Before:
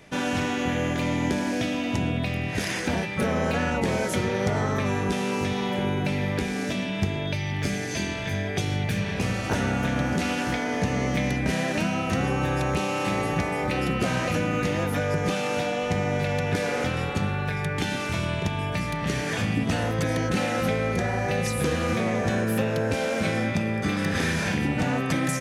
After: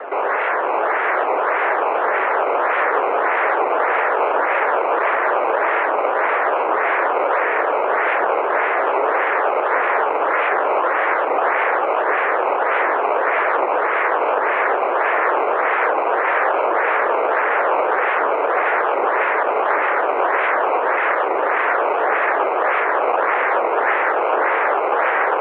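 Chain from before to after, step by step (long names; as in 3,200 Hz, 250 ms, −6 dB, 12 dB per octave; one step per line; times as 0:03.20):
in parallel at −2 dB: brickwall limiter −25.5 dBFS, peak gain reduction 11.5 dB
on the sum: sine wavefolder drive 18 dB, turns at −12 dBFS
feedback delay with all-pass diffusion 553 ms, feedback 78%, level −7 dB
sample-and-hold swept by an LFO 18×, swing 100% 1.7 Hz
single-sideband voice off tune +96 Hz 320–2,100 Hz
wow of a warped record 78 rpm, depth 100 cents
level −2.5 dB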